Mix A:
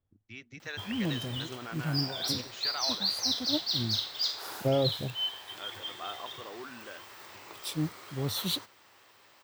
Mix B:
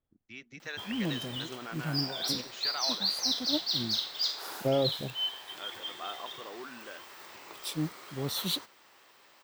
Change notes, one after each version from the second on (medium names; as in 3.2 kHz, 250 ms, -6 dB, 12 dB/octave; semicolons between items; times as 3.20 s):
master: add peaking EQ 100 Hz -13.5 dB 0.51 oct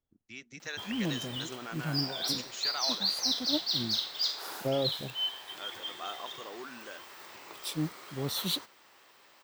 first voice: remove low-pass 4.2 kHz 12 dB/octave; second voice -3.0 dB